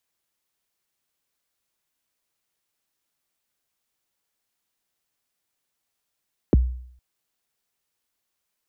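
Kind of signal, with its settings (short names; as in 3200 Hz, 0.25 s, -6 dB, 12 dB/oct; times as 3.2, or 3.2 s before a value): kick drum length 0.46 s, from 500 Hz, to 62 Hz, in 20 ms, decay 0.63 s, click off, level -10 dB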